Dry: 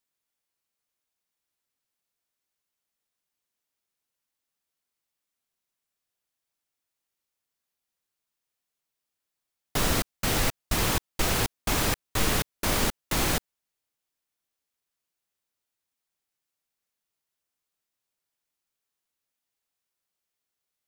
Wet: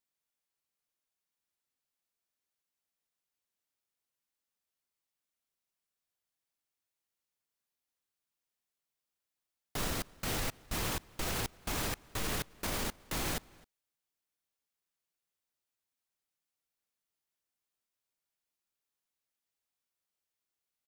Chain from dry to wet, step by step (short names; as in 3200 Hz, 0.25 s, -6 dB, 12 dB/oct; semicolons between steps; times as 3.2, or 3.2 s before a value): limiter -20 dBFS, peak gain reduction 7.5 dB; outdoor echo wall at 45 m, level -24 dB; gain -5 dB